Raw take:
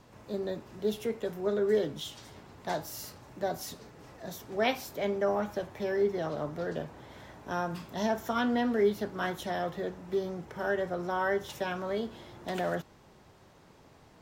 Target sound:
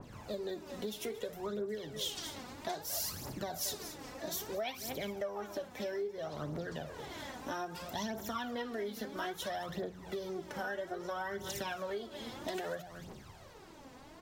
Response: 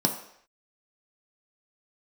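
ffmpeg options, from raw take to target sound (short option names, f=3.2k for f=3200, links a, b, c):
-filter_complex "[0:a]bandreject=f=60:t=h:w=6,bandreject=f=120:t=h:w=6,bandreject=f=180:t=h:w=6,asplit=2[a][b];[b]aecho=0:1:59|226:0.1|0.15[c];[a][c]amix=inputs=2:normalize=0,aphaser=in_gain=1:out_gain=1:delay=4.1:decay=0.61:speed=0.61:type=triangular,acompressor=threshold=-39dB:ratio=6,adynamicequalizer=threshold=0.00141:dfrequency=2600:dqfactor=0.7:tfrequency=2600:tqfactor=0.7:attack=5:release=100:ratio=0.375:range=3:mode=boostabove:tftype=highshelf,volume=2dB"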